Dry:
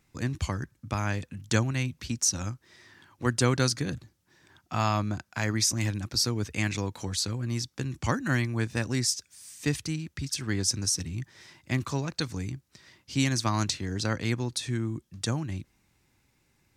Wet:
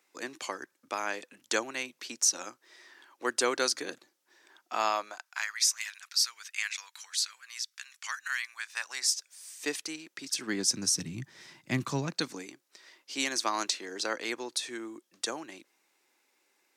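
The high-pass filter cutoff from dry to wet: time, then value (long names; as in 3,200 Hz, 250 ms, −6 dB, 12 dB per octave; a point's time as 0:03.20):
high-pass filter 24 dB per octave
0:04.87 360 Hz
0:05.53 1,400 Hz
0:08.56 1,400 Hz
0:09.47 360 Hz
0:10.10 360 Hz
0:10.96 140 Hz
0:12.03 140 Hz
0:12.50 360 Hz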